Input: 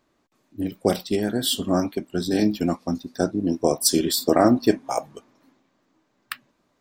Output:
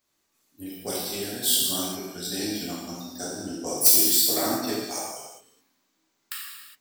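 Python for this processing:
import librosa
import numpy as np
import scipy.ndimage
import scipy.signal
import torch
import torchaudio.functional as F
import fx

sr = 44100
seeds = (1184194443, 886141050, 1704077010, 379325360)

y = fx.self_delay(x, sr, depth_ms=0.057)
y = scipy.signal.lfilter([1.0, -0.9], [1.0], y)
y = fx.rev_gated(y, sr, seeds[0], gate_ms=440, shape='falling', drr_db=-7.5)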